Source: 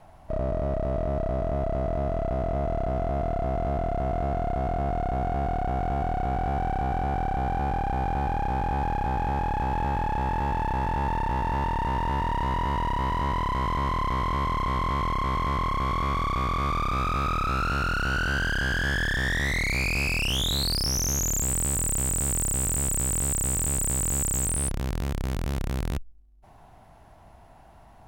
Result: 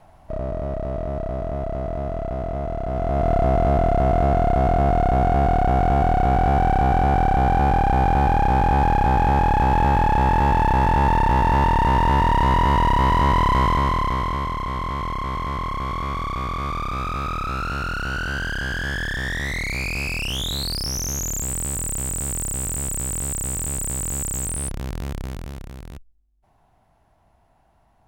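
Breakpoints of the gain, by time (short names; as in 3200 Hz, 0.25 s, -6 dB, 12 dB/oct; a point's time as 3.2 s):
2.82 s +0.5 dB
3.33 s +9 dB
13.58 s +9 dB
14.57 s 0 dB
25.17 s 0 dB
25.74 s -9 dB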